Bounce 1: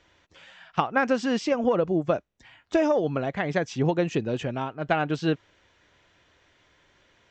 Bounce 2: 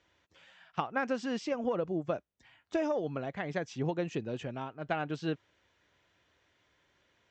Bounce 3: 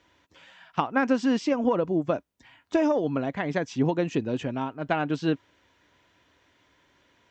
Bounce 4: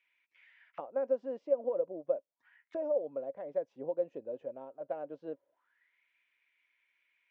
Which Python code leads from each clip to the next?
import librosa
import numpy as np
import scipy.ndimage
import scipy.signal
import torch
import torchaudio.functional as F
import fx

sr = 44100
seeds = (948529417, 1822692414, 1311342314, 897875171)

y1 = scipy.signal.sosfilt(scipy.signal.butter(2, 49.0, 'highpass', fs=sr, output='sos'), x)
y1 = y1 * librosa.db_to_amplitude(-9.0)
y2 = fx.small_body(y1, sr, hz=(270.0, 970.0), ring_ms=45, db=7)
y2 = y2 * librosa.db_to_amplitude(6.5)
y3 = fx.auto_wah(y2, sr, base_hz=550.0, top_hz=2400.0, q=9.3, full_db=-29.0, direction='down')